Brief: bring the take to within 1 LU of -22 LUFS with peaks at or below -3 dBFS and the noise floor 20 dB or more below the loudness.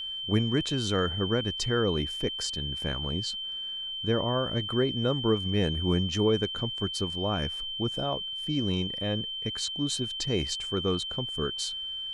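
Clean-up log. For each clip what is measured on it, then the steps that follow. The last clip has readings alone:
tick rate 44 per s; steady tone 3.1 kHz; tone level -33 dBFS; loudness -29.0 LUFS; peak level -12.5 dBFS; loudness target -22.0 LUFS
-> de-click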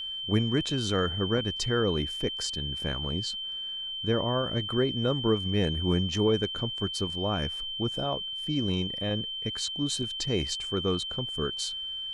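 tick rate 0 per s; steady tone 3.1 kHz; tone level -33 dBFS
-> band-stop 3.1 kHz, Q 30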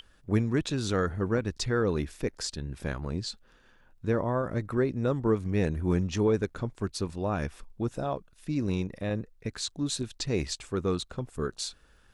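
steady tone not found; loudness -30.5 LUFS; peak level -13.0 dBFS; loudness target -22.0 LUFS
-> trim +8.5 dB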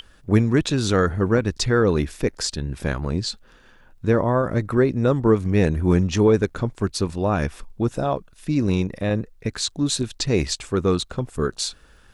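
loudness -22.0 LUFS; peak level -4.5 dBFS; noise floor -52 dBFS

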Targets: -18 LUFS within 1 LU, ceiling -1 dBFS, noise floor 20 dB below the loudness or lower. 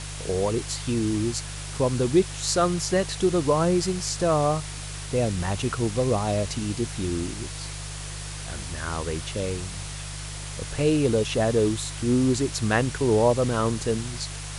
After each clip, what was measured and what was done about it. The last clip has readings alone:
hum 50 Hz; highest harmonic 150 Hz; hum level -35 dBFS; noise floor -35 dBFS; noise floor target -46 dBFS; loudness -25.5 LUFS; peak level -7.5 dBFS; loudness target -18.0 LUFS
-> de-hum 50 Hz, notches 3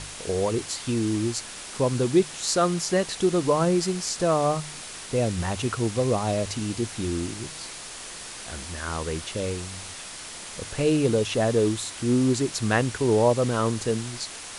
hum not found; noise floor -39 dBFS; noise floor target -46 dBFS
-> noise print and reduce 7 dB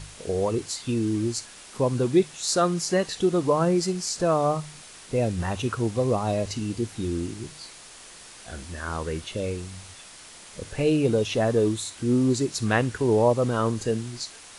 noise floor -46 dBFS; loudness -25.5 LUFS; peak level -7.5 dBFS; loudness target -18.0 LUFS
-> trim +7.5 dB; peak limiter -1 dBFS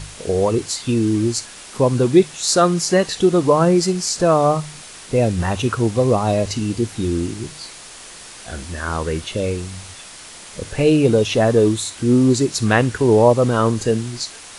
loudness -18.0 LUFS; peak level -1.0 dBFS; noise floor -39 dBFS

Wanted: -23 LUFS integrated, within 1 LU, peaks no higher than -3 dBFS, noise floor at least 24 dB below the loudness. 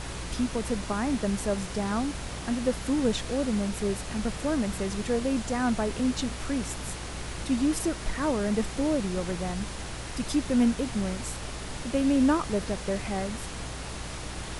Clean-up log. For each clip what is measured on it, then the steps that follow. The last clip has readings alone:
hum 60 Hz; highest harmonic 180 Hz; hum level -39 dBFS; noise floor -37 dBFS; noise floor target -53 dBFS; loudness -29.0 LUFS; peak level -12.5 dBFS; loudness target -23.0 LUFS
-> de-hum 60 Hz, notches 3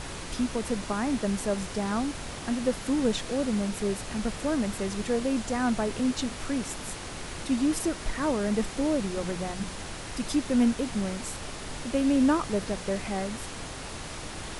hum not found; noise floor -39 dBFS; noise floor target -54 dBFS
-> noise print and reduce 15 dB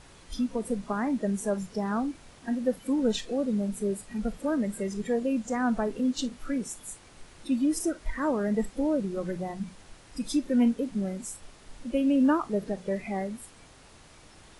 noise floor -53 dBFS; noise floor target -54 dBFS
-> noise print and reduce 6 dB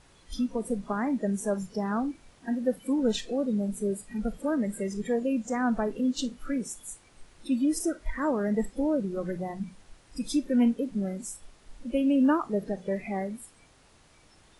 noise floor -59 dBFS; loudness -29.5 LUFS; peak level -14.0 dBFS; loudness target -23.0 LUFS
-> trim +6.5 dB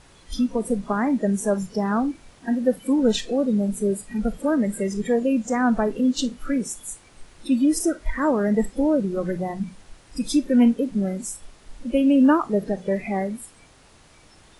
loudness -23.0 LUFS; peak level -7.5 dBFS; noise floor -53 dBFS

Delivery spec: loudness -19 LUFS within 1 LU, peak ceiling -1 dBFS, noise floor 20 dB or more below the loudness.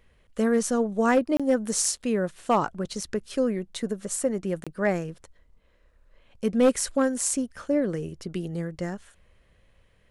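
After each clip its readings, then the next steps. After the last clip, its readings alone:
clipped samples 0.2%; clipping level -13.5 dBFS; dropouts 2; longest dropout 26 ms; loudness -26.5 LUFS; peak level -13.5 dBFS; loudness target -19.0 LUFS
-> clip repair -13.5 dBFS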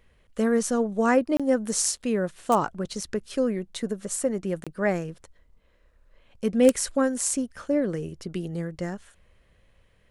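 clipped samples 0.0%; dropouts 2; longest dropout 26 ms
-> interpolate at 1.37/4.64 s, 26 ms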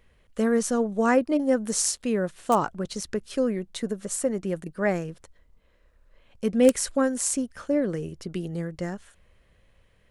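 dropouts 0; loudness -26.0 LUFS; peak level -4.5 dBFS; loudness target -19.0 LUFS
-> trim +7 dB; peak limiter -1 dBFS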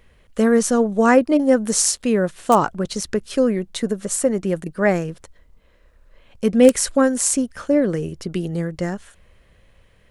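loudness -19.0 LUFS; peak level -1.0 dBFS; noise floor -55 dBFS

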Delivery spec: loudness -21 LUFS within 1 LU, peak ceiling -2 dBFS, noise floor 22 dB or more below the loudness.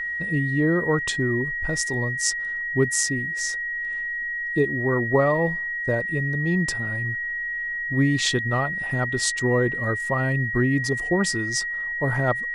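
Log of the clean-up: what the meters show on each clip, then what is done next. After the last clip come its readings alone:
steady tone 1.9 kHz; tone level -26 dBFS; loudness -23.5 LUFS; peak level -7.0 dBFS; loudness target -21.0 LUFS
-> band-stop 1.9 kHz, Q 30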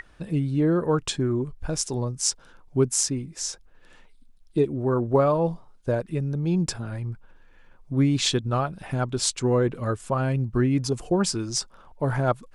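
steady tone not found; loudness -25.5 LUFS; peak level -7.5 dBFS; loudness target -21.0 LUFS
-> trim +4.5 dB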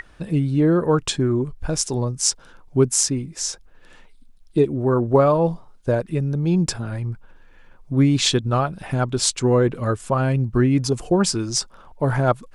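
loudness -21.0 LUFS; peak level -3.0 dBFS; noise floor -49 dBFS

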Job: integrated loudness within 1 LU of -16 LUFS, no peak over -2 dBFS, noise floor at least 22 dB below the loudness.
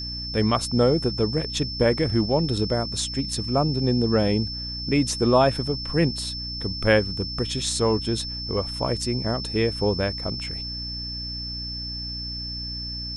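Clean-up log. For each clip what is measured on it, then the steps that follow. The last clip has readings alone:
hum 60 Hz; highest harmonic 300 Hz; hum level -35 dBFS; steady tone 5.3 kHz; tone level -31 dBFS; loudness -24.5 LUFS; peak level -6.5 dBFS; loudness target -16.0 LUFS
-> hum notches 60/120/180/240/300 Hz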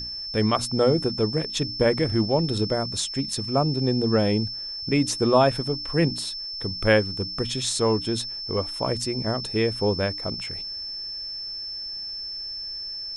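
hum not found; steady tone 5.3 kHz; tone level -31 dBFS
-> band-stop 5.3 kHz, Q 30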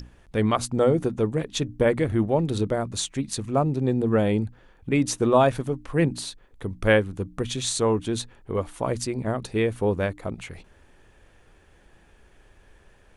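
steady tone not found; loudness -25.0 LUFS; peak level -6.0 dBFS; loudness target -16.0 LUFS
-> trim +9 dB; peak limiter -2 dBFS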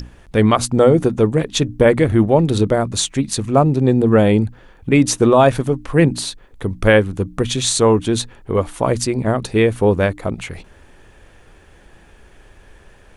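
loudness -16.5 LUFS; peak level -2.0 dBFS; noise floor -47 dBFS

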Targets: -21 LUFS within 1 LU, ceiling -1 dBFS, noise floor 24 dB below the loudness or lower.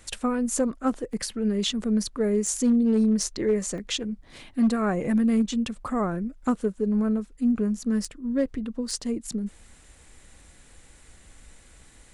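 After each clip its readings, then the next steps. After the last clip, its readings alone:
clipped samples 0.3%; clipping level -15.5 dBFS; dropouts 3; longest dropout 2.9 ms; loudness -26.0 LUFS; peak level -15.5 dBFS; loudness target -21.0 LUFS
-> clip repair -15.5 dBFS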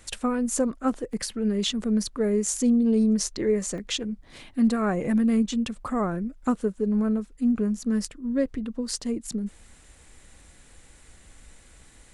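clipped samples 0.0%; dropouts 3; longest dropout 2.9 ms
-> interpolate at 1.13/3.78/5.87 s, 2.9 ms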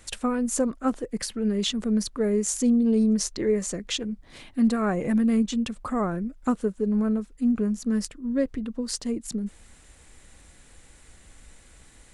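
dropouts 0; loudness -26.0 LUFS; peak level -12.0 dBFS; loudness target -21.0 LUFS
-> trim +5 dB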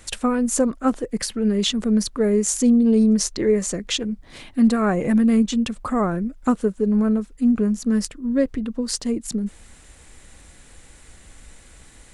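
loudness -21.0 LUFS; peak level -7.0 dBFS; noise floor -48 dBFS

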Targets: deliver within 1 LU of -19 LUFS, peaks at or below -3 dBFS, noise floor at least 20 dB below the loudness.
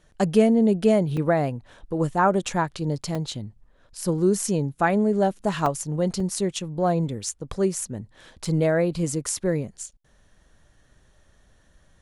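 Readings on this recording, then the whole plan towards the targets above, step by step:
dropouts 5; longest dropout 3.6 ms; loudness -24.0 LUFS; peak level -6.0 dBFS; loudness target -19.0 LUFS
-> interpolate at 1.17/3.15/5.66/6.20/8.45 s, 3.6 ms; trim +5 dB; peak limiter -3 dBFS

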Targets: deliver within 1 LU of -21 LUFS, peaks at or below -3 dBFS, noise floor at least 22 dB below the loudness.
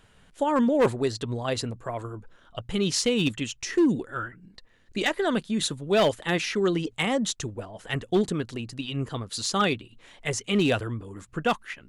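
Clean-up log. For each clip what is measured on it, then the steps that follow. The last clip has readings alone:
clipped samples 0.6%; clipping level -15.5 dBFS; loudness -27.0 LUFS; peak level -15.5 dBFS; loudness target -21.0 LUFS
-> clip repair -15.5 dBFS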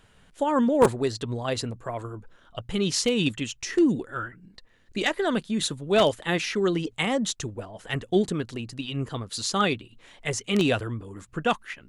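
clipped samples 0.0%; loudness -26.5 LUFS; peak level -6.5 dBFS; loudness target -21.0 LUFS
-> trim +5.5 dB; peak limiter -3 dBFS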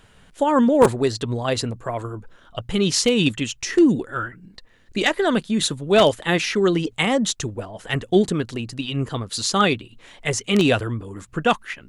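loudness -21.0 LUFS; peak level -3.0 dBFS; noise floor -53 dBFS

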